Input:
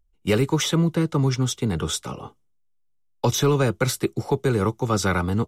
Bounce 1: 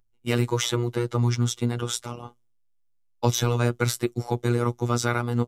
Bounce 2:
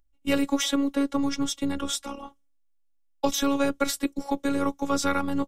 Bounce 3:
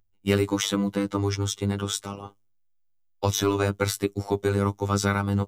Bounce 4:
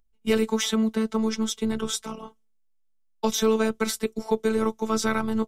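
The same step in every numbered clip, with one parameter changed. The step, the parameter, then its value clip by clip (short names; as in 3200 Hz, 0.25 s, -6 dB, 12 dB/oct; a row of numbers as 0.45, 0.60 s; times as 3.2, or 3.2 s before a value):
robotiser, frequency: 120, 280, 100, 220 Hz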